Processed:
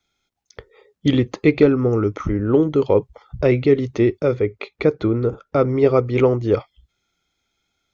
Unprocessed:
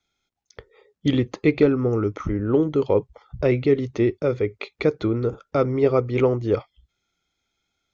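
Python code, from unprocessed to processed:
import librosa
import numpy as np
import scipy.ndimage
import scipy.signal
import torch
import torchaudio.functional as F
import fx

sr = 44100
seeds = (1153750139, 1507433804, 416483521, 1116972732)

y = fx.high_shelf(x, sr, hz=3500.0, db=-7.5, at=(4.35, 5.69))
y = y * librosa.db_to_amplitude(3.5)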